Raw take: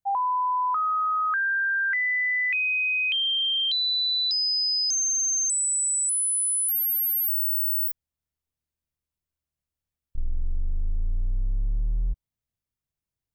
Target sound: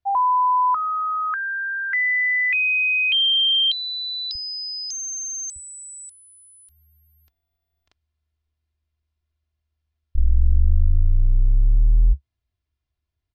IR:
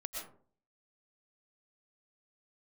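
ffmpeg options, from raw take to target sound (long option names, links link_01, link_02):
-af "lowpass=frequency=4800:width=0.5412,lowpass=frequency=4800:width=1.3066,asetnsamples=nb_out_samples=441:pad=0,asendcmd='4.35 equalizer g -3;5.56 equalizer g 13.5',equalizer=frequency=70:width_type=o:width=0.97:gain=10.5,aecho=1:1:2.9:0.53,volume=3.5dB"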